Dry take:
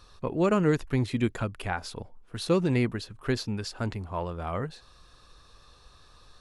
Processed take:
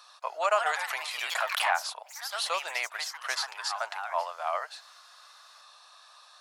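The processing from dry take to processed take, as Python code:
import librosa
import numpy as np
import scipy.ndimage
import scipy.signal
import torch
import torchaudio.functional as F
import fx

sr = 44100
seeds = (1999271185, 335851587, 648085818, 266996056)

y = scipy.signal.sosfilt(scipy.signal.cheby1(5, 1.0, 630.0, 'highpass', fs=sr, output='sos'), x)
y = fx.echo_pitch(y, sr, ms=224, semitones=3, count=3, db_per_echo=-6.0)
y = fx.pre_swell(y, sr, db_per_s=46.0, at=(0.69, 1.8))
y = y * 10.0 ** (5.0 / 20.0)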